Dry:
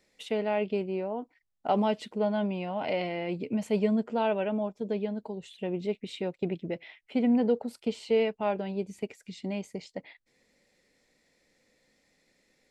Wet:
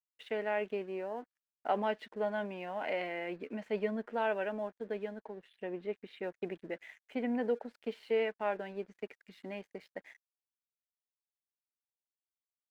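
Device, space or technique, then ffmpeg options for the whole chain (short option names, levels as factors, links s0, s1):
pocket radio on a weak battery: -filter_complex "[0:a]highpass=300,lowpass=3100,aeval=exprs='sgn(val(0))*max(abs(val(0))-0.001,0)':c=same,equalizer=f=1700:t=o:w=0.51:g=11,asettb=1/sr,asplit=3[s0][s1][s2];[s0]atrim=end=5.204[s3];[s1]atrim=start=5.2:end=6.23,asetpts=PTS-STARTPTS,afade=t=in:d=0.004:c=qsin,afade=t=out:st=1.026:d=0.004:c=qsin,highshelf=f=4600:g=-11[s4];[s2]atrim=start=6.226[s5];[s3][s4]acrossfade=d=0.004:c1=hsin:c2=qsin[s6];[s6][s5]acrossfade=d=0.004:c1=qsin:c2=hsin,volume=0.562"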